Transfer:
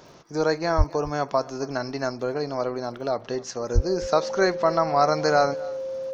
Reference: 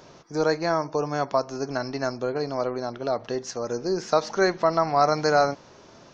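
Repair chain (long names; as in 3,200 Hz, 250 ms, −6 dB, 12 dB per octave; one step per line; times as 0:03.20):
click removal
notch filter 530 Hz, Q 30
0:00.77–0:00.89: high-pass filter 140 Hz 24 dB per octave
0:03.74–0:03.86: high-pass filter 140 Hz 24 dB per octave
echo removal 263 ms −21 dB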